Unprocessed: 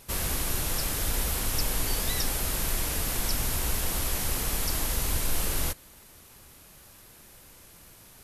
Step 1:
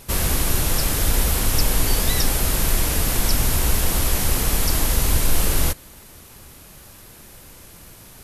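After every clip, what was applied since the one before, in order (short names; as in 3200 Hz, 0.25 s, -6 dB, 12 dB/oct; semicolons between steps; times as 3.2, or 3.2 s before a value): low shelf 450 Hz +3.5 dB; gain +7 dB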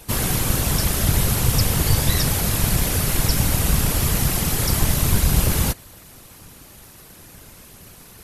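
whisperiser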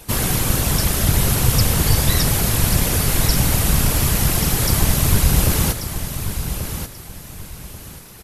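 feedback echo 1.136 s, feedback 27%, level -9 dB; gain +2 dB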